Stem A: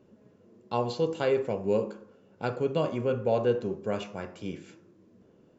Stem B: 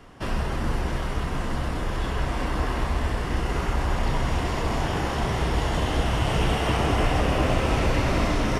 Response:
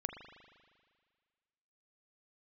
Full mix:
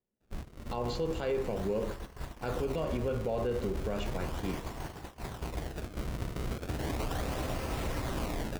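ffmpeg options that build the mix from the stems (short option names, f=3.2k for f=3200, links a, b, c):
-filter_complex "[0:a]volume=-1.5dB,asplit=2[a][b];[b]volume=-13dB[c];[1:a]acrusher=samples=30:mix=1:aa=0.000001:lfo=1:lforange=48:lforate=0.36,volume=-12.5dB,asplit=2[d][e];[e]volume=-20dB[f];[2:a]atrim=start_sample=2205[g];[c][f]amix=inputs=2:normalize=0[h];[h][g]afir=irnorm=-1:irlink=0[i];[a][d][i]amix=inputs=3:normalize=0,agate=range=-33dB:threshold=-35dB:ratio=16:detection=peak,alimiter=limit=-24dB:level=0:latency=1:release=49"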